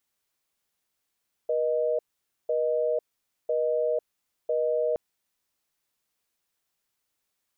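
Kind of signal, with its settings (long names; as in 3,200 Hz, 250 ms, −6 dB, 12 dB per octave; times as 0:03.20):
call progress tone busy tone, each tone −25.5 dBFS 3.47 s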